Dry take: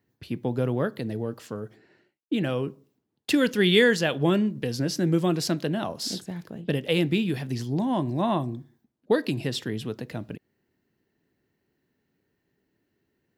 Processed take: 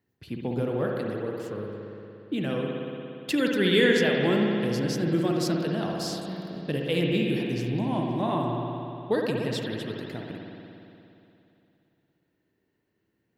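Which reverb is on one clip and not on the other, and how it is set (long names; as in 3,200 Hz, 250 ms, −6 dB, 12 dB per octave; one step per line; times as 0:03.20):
spring reverb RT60 2.9 s, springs 58 ms, chirp 35 ms, DRR −0.5 dB
level −4 dB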